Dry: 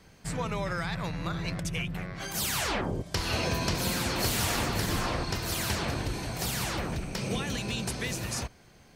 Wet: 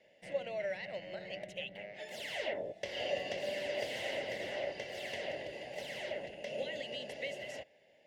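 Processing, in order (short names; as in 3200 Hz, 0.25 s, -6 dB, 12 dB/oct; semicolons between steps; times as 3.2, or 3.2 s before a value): vowel filter e; wide varispeed 1.11×; gain +4.5 dB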